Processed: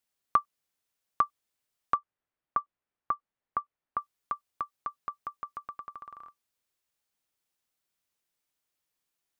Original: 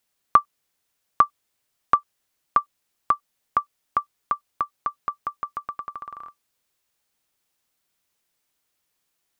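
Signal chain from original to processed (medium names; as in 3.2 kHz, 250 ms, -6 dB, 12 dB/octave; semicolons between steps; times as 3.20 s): 1.94–3.99 s: low-pass 1.9 kHz 12 dB/octave; trim -8.5 dB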